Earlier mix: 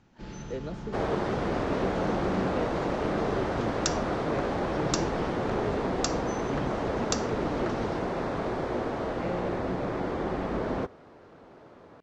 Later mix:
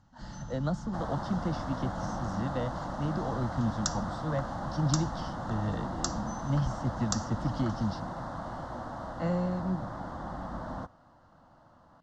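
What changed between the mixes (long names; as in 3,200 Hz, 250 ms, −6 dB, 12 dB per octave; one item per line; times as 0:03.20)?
speech +11.5 dB
second sound −3.5 dB
master: add phaser with its sweep stopped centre 1,000 Hz, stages 4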